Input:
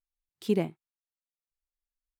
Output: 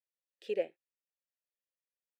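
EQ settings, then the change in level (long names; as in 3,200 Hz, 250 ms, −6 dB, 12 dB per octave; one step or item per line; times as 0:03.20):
formant filter e
bass and treble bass −15 dB, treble +5 dB
+7.0 dB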